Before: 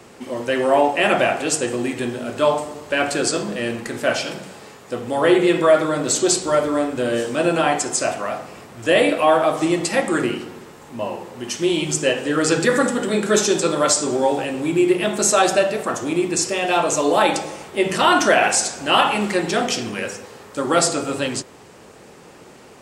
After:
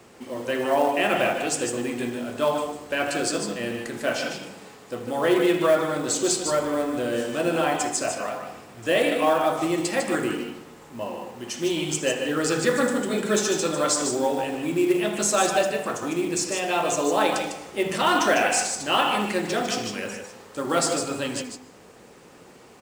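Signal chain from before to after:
multi-tap delay 79/149/153 ms −17/−9.5/−8.5 dB
on a send at −19 dB: convolution reverb RT60 0.50 s, pre-delay 115 ms
on the sum: log-companded quantiser 6 bits
level −6 dB

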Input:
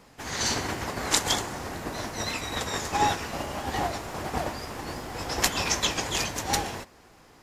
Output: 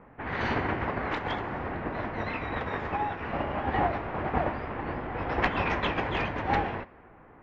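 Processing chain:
low-pass that shuts in the quiet parts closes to 1,700 Hz, open at −25.5 dBFS
low-pass filter 2,400 Hz 24 dB per octave
0:00.97–0:03.27: downward compressor 6 to 1, threshold −30 dBFS, peak gain reduction 11 dB
level +2.5 dB

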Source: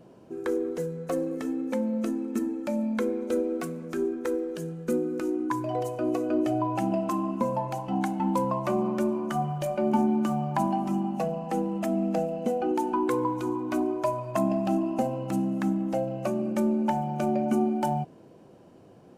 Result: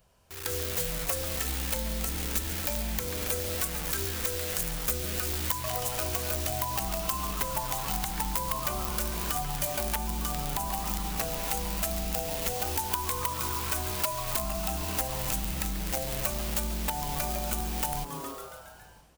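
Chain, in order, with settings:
sub-octave generator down 2 octaves, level −6 dB
in parallel at −4.5 dB: bit-depth reduction 6 bits, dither none
on the sum: guitar amp tone stack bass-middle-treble 10-0-10
automatic gain control gain up to 12.5 dB
on a send: echo with shifted repeats 138 ms, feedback 63%, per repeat +120 Hz, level −14 dB
on the sum: downward compressor 10 to 1, threshold −29 dBFS, peak gain reduction 14 dB
wrap-around overflow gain 23 dB
high-shelf EQ 11,000 Hz +10.5 dB

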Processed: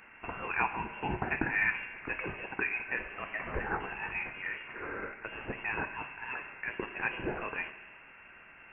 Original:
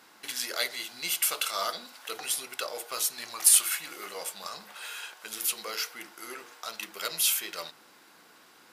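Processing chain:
parametric band 240 Hz +3.5 dB 0.4 octaves
feedback delay network reverb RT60 1.8 s, low-frequency decay 1.35×, high-frequency decay 0.6×, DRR 9 dB
voice inversion scrambler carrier 3,000 Hz
level +3 dB

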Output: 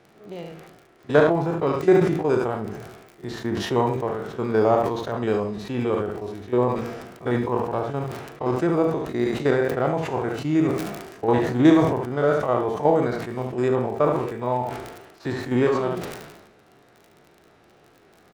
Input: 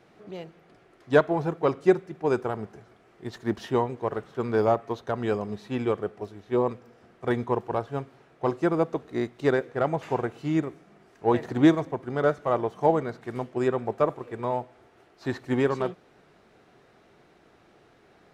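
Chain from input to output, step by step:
spectrum averaged block by block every 50 ms
surface crackle 28 per second −42 dBFS
ambience of single reflections 41 ms −11 dB, 72 ms −9 dB
level that may fall only so fast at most 48 dB per second
level +3 dB

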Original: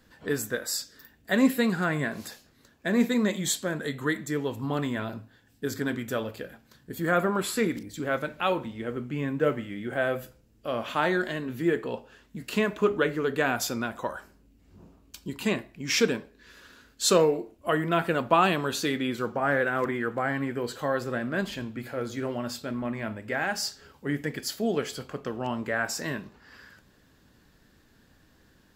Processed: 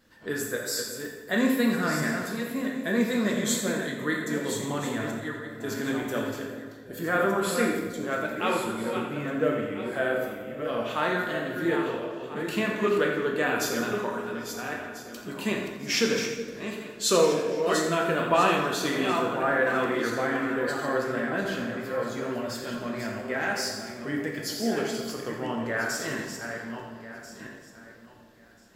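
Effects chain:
feedback delay that plays each chunk backwards 670 ms, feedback 41%, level −7 dB
parametric band 780 Hz −2.5 dB 0.22 octaves
tape wow and flutter 21 cents
low-shelf EQ 96 Hz −8 dB
on a send: echo with a time of its own for lows and highs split 730 Hz, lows 371 ms, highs 85 ms, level −13 dB
on the sum: dense smooth reverb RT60 1.1 s, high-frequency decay 0.7×, DRR 0.5 dB
level −2.5 dB

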